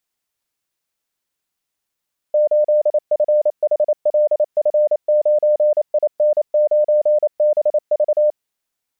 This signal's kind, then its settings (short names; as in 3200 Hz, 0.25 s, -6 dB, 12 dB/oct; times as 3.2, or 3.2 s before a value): Morse "8FHLF9IN9BV" 28 wpm 601 Hz -11 dBFS